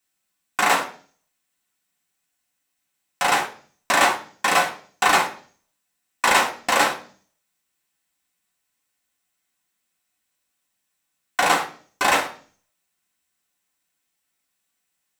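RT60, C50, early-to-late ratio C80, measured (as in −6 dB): 0.45 s, 11.5 dB, 17.0 dB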